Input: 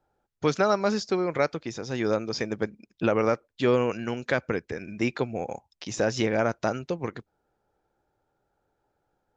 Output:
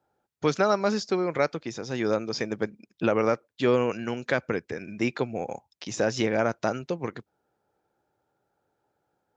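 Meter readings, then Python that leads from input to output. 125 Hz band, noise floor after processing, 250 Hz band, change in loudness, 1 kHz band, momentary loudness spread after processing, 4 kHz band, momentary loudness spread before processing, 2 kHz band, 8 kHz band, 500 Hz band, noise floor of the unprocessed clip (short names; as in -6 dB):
-1.5 dB, -79 dBFS, 0.0 dB, 0.0 dB, 0.0 dB, 11 LU, 0.0 dB, 11 LU, 0.0 dB, n/a, 0.0 dB, -78 dBFS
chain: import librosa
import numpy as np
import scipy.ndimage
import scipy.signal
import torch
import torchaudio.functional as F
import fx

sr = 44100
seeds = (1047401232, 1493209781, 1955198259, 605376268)

y = scipy.signal.sosfilt(scipy.signal.butter(2, 98.0, 'highpass', fs=sr, output='sos'), x)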